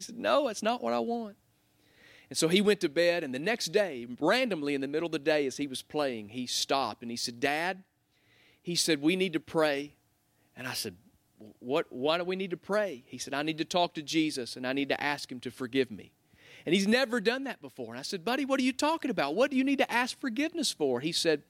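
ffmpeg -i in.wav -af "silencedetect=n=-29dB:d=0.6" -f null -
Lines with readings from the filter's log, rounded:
silence_start: 1.23
silence_end: 2.32 | silence_duration: 1.09
silence_start: 7.72
silence_end: 8.69 | silence_duration: 0.96
silence_start: 9.82
silence_end: 10.61 | silence_duration: 0.79
silence_start: 10.88
silence_end: 11.69 | silence_duration: 0.81
silence_start: 15.83
silence_end: 16.67 | silence_duration: 0.84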